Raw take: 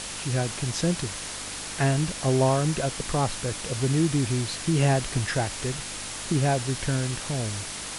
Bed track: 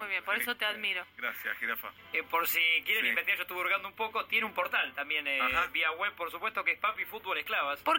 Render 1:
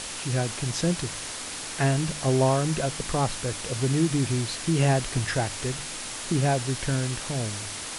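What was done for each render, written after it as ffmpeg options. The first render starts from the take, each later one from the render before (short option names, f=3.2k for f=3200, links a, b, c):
-af "bandreject=f=50:t=h:w=4,bandreject=f=100:t=h:w=4,bandreject=f=150:t=h:w=4,bandreject=f=200:t=h:w=4"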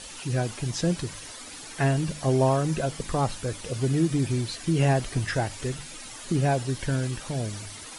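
-af "afftdn=nr=11:nf=-36"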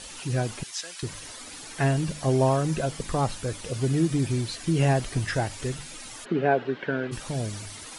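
-filter_complex "[0:a]asettb=1/sr,asplit=3[a][b][c];[a]atrim=end=0.634[d];[b]atrim=start=0.63:end=1.03,asetpts=PTS-STARTPTS,afade=t=in:d=0.004:c=qsin,afade=t=out:st=0.396:d=0.004:c=qsin,highpass=1.4k[e];[c]atrim=start=1.026[f];[d][e]acrossfade=d=0.004:c1=hsin:c2=qsin[g];[g][f]acrossfade=d=0.004:c1=qsin:c2=hsin,asplit=3[h][i][j];[h]afade=t=out:st=6.24:d=0.02[k];[i]highpass=f=180:w=0.5412,highpass=f=180:w=1.3066,equalizer=f=430:t=q:w=4:g=8,equalizer=f=670:t=q:w=4:g=3,equalizer=f=1.5k:t=q:w=4:g=7,lowpass=f=3.1k:w=0.5412,lowpass=f=3.1k:w=1.3066,afade=t=in:st=6.24:d=0.02,afade=t=out:st=7.11:d=0.02[l];[j]afade=t=in:st=7.11:d=0.02[m];[k][l][m]amix=inputs=3:normalize=0"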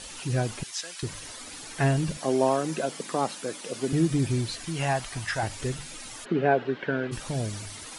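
-filter_complex "[0:a]asettb=1/sr,asplit=3[a][b][c];[a]atrim=end=2.174[d];[b]atrim=start=2.17:end=3.93,asetpts=PTS-STARTPTS,afade=t=in:d=0.004:c=qsin,afade=t=out:st=1.756:d=0.004:c=qsin,highpass=f=200:w=0.5412,highpass=f=200:w=1.3066[e];[c]atrim=start=3.926[f];[d][e]acrossfade=d=0.004:c1=hsin:c2=qsin[g];[g][f]acrossfade=d=0.004:c1=qsin:c2=hsin,asettb=1/sr,asplit=3[h][i][j];[h]atrim=end=4.654[k];[i]atrim=start=4.65:end=5.43,asetpts=PTS-STARTPTS,afade=t=in:d=0.004:c=qsin,afade=t=out:st=0.776:d=0.004:c=qsin,lowshelf=f=600:t=q:w=1.5:g=-8[l];[j]atrim=start=5.426[m];[k][l]acrossfade=d=0.004:c1=hsin:c2=qsin[n];[n][m]acrossfade=d=0.004:c1=qsin:c2=hsin"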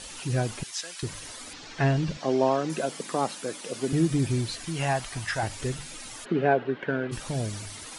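-filter_complex "[0:a]asettb=1/sr,asplit=3[a][b][c];[a]atrim=end=1.534[d];[b]atrim=start=1.53:end=2.7,asetpts=PTS-STARTPTS,afade=t=in:d=0.004:c=qsin,afade=t=out:st=1.166:d=0.004:c=qsin,lowpass=f=5.9k:w=0.5412,lowpass=f=5.9k:w=1.3066[e];[c]atrim=start=2.696[f];[d][e]acrossfade=d=0.004:c1=hsin:c2=qsin[g];[g][f]acrossfade=d=0.004:c1=qsin:c2=hsin,asplit=3[h][i][j];[h]afade=t=out:st=6.53:d=0.02[k];[i]adynamicsmooth=sensitivity=2:basefreq=4k,afade=t=in:st=6.53:d=0.02,afade=t=out:st=7.08:d=0.02[l];[j]afade=t=in:st=7.08:d=0.02[m];[k][l][m]amix=inputs=3:normalize=0"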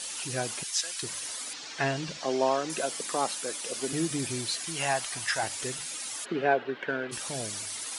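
-af "highpass=f=510:p=1,highshelf=f=4.4k:g=8"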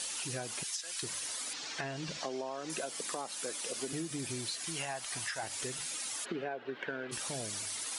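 -af "alimiter=limit=-19.5dB:level=0:latency=1:release=248,acompressor=threshold=-35dB:ratio=6"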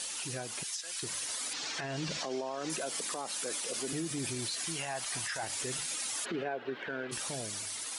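-af "dynaudnorm=f=220:g=13:m=5.5dB,alimiter=level_in=3dB:limit=-24dB:level=0:latency=1:release=28,volume=-3dB"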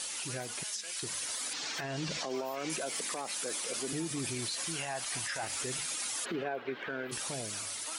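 -filter_complex "[1:a]volume=-21dB[a];[0:a][a]amix=inputs=2:normalize=0"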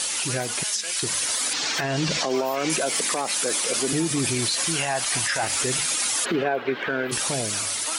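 -af "volume=12dB"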